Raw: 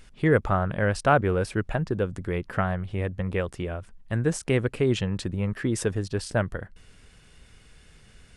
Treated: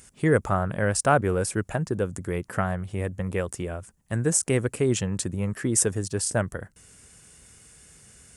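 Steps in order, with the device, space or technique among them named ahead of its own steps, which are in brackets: budget condenser microphone (HPF 69 Hz; resonant high shelf 5400 Hz +11.5 dB, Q 1.5)

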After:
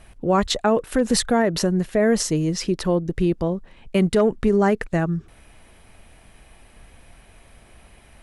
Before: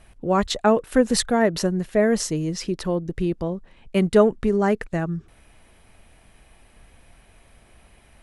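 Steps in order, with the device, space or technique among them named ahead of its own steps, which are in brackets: clipper into limiter (hard clip -6.5 dBFS, distortion -33 dB; limiter -13.5 dBFS, peak gain reduction 7 dB); gain +3.5 dB

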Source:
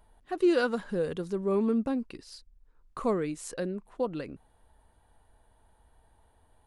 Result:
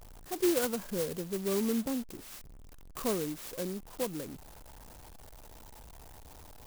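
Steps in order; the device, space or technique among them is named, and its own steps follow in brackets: early CD player with a faulty converter (zero-crossing step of -41 dBFS; clock jitter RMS 0.13 ms); gain -4.5 dB

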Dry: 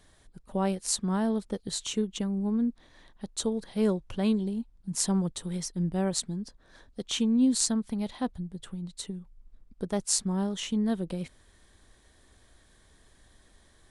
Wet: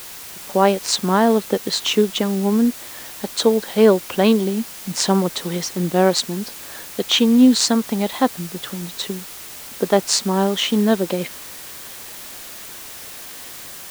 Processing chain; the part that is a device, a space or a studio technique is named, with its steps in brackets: dictaphone (BPF 320–4200 Hz; AGC gain up to 11.5 dB; wow and flutter; white noise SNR 16 dB); gain +5.5 dB

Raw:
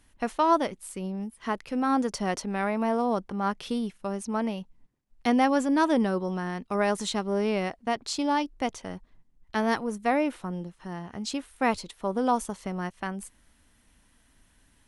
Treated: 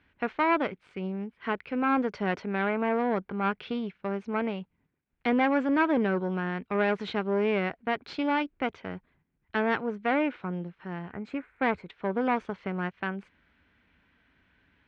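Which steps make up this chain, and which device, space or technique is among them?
11.12–11.9 band shelf 4100 Hz -14.5 dB 1.3 oct; guitar amplifier (tube stage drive 20 dB, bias 0.6; tone controls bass +6 dB, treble -2 dB; speaker cabinet 93–3700 Hz, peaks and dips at 120 Hz -7 dB, 220 Hz -4 dB, 420 Hz +4 dB, 1500 Hz +8 dB, 2300 Hz +8 dB)

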